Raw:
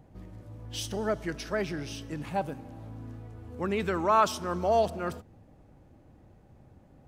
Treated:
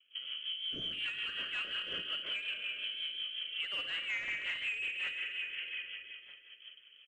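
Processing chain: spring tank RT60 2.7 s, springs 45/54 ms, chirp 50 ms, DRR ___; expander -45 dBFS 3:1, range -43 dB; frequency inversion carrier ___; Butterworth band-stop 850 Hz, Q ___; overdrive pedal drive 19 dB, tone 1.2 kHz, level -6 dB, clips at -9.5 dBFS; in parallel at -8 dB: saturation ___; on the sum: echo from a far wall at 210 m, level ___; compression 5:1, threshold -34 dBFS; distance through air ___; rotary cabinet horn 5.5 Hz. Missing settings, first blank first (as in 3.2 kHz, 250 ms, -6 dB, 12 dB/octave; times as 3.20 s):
4 dB, 3.2 kHz, 1.5, -27.5 dBFS, -25 dB, 55 m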